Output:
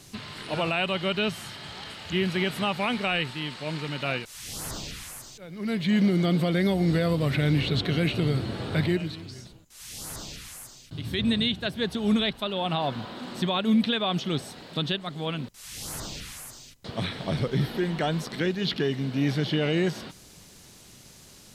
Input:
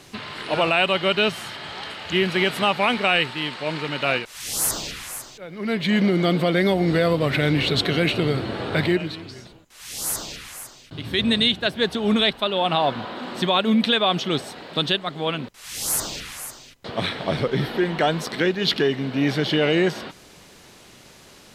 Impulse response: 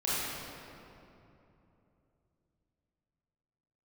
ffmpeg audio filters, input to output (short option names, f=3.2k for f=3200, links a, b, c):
-filter_complex "[0:a]acrossover=split=3800[a][b];[b]acompressor=threshold=-41dB:ratio=4:attack=1:release=60[c];[a][c]amix=inputs=2:normalize=0,bass=f=250:g=9,treble=f=4k:g=10,volume=-8dB"